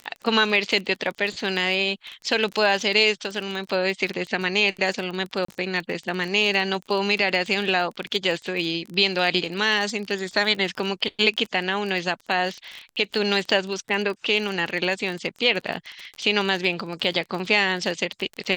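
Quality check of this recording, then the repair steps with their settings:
surface crackle 25 per second −28 dBFS
0:05.45–0:05.48: drop-out 34 ms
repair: click removal
repair the gap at 0:05.45, 34 ms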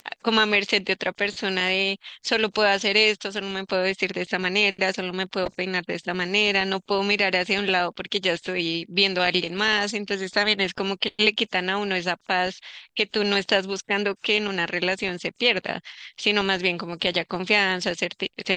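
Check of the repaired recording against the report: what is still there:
none of them is left

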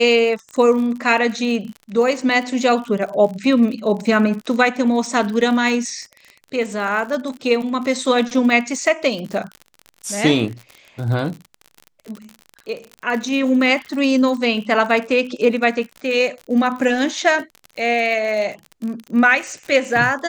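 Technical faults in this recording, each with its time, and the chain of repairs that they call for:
surface crackle 56 per second −27 dBFS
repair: click removal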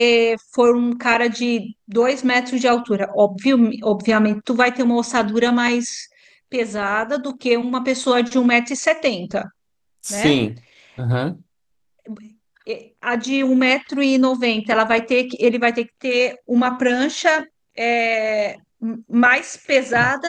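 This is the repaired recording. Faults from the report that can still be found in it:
none of them is left

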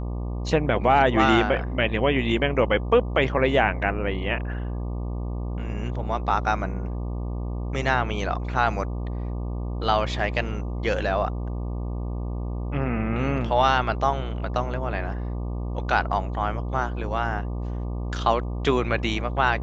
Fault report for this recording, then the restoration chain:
mains buzz 60 Hz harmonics 20 −29 dBFS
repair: hum removal 60 Hz, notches 20

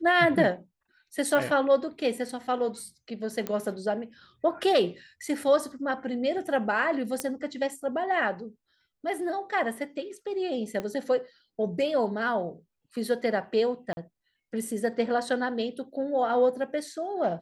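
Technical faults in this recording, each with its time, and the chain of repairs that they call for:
0:01.35: click −15 dBFS
0:03.47: click −16 dBFS
0:07.20: click −13 dBFS
0:10.80: click −19 dBFS
0:13.93–0:13.97: drop-out 40 ms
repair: click removal
repair the gap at 0:13.93, 40 ms

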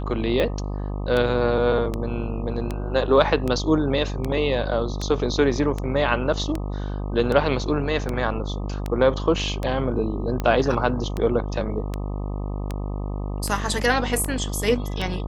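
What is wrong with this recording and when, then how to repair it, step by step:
mains buzz 50 Hz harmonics 25 −28 dBFS
scratch tick 78 rpm −13 dBFS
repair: click removal
hum removal 50 Hz, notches 25

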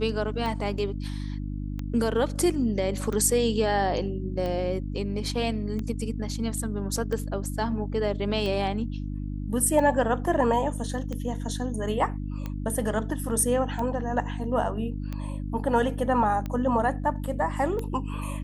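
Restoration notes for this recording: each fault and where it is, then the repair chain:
mains hum 50 Hz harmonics 6 −32 dBFS
scratch tick 45 rpm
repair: click removal
hum removal 50 Hz, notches 6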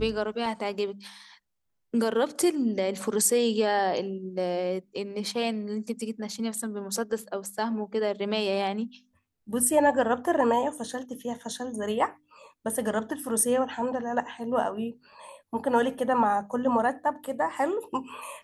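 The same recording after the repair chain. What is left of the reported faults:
none of them is left

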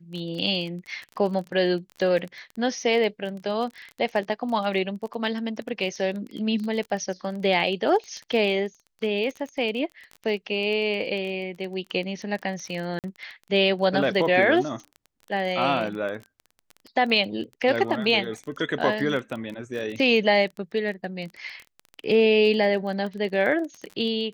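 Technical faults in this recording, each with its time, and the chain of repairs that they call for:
surface crackle 21 per second −31 dBFS
0:12.99–0:13.04: drop-out 48 ms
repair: click removal
repair the gap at 0:12.99, 48 ms

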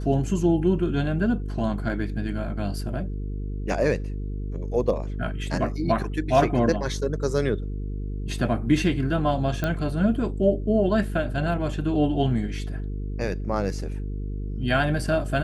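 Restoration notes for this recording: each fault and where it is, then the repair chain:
mains buzz 50 Hz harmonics 9 −30 dBFS
0:09.64: click −13 dBFS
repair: click removal
hum removal 50 Hz, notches 9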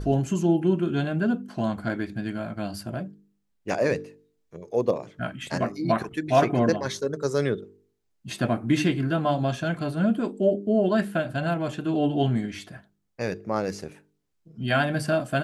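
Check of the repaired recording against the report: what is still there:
none of them is left

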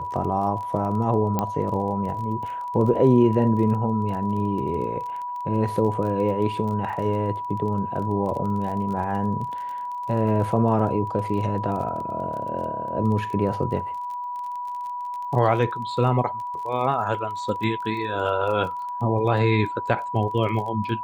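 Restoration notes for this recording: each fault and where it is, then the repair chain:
surface crackle 26 per second −32 dBFS
whistle 980 Hz −28 dBFS
0:01.39: click −10 dBFS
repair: click removal
notch filter 980 Hz, Q 30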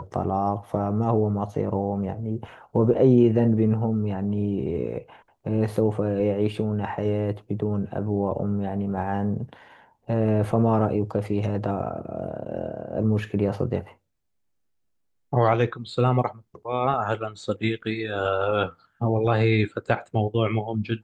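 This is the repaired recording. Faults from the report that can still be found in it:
none of them is left

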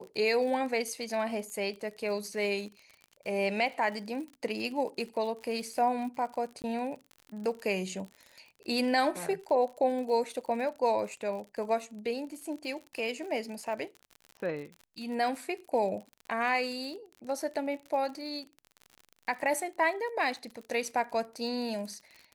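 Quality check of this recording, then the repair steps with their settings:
surface crackle 52 per second −39 dBFS
0:06.62–0:06.64: drop-out 19 ms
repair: click removal
repair the gap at 0:06.62, 19 ms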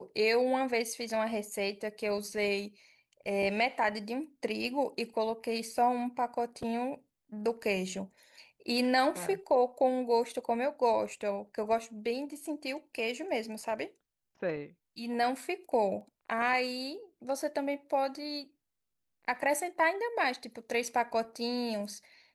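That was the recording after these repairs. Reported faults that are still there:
none of them is left

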